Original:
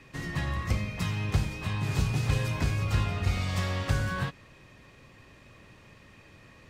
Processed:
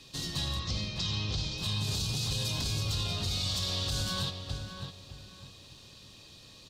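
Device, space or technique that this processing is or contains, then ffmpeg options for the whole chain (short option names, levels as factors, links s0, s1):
over-bright horn tweeter: -filter_complex "[0:a]asettb=1/sr,asplit=3[s0][s1][s2];[s0]atrim=end=0.594[s3];[s1]atrim=start=0.59:end=1.58,asetpts=PTS-STARTPTS,afade=t=in:d=0.004:c=qsin,afade=t=out:st=0.986:d=0.004:c=qsin,lowpass=f=6000:w=0.5412,lowpass=f=6000:w=1.3066[s4];[s2]atrim=start=1.576[s5];[s3][s4]acrossfade=d=0.004:c1=hsin:c2=qsin[s6];[s6][s5]acrossfade=d=0.004:c1=qsin:c2=hsin,highshelf=f=2800:t=q:w=3:g=11.5,asplit=2[s7][s8];[s8]adelay=604,lowpass=f=2200:p=1,volume=0.422,asplit=2[s9][s10];[s10]adelay=604,lowpass=f=2200:p=1,volume=0.3,asplit=2[s11][s12];[s12]adelay=604,lowpass=f=2200:p=1,volume=0.3,asplit=2[s13][s14];[s14]adelay=604,lowpass=f=2200:p=1,volume=0.3[s15];[s7][s9][s11][s13][s15]amix=inputs=5:normalize=0,alimiter=limit=0.106:level=0:latency=1:release=33,volume=0.668"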